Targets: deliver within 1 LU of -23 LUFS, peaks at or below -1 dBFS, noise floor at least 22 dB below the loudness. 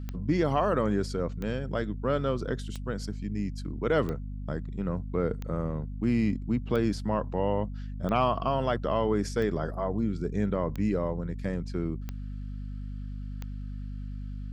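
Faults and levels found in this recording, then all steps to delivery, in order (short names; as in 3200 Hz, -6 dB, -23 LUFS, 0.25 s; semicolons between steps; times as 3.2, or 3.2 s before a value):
clicks 11; hum 50 Hz; harmonics up to 250 Hz; hum level -34 dBFS; loudness -30.5 LUFS; peak -12.0 dBFS; loudness target -23.0 LUFS
-> de-click; notches 50/100/150/200/250 Hz; gain +7.5 dB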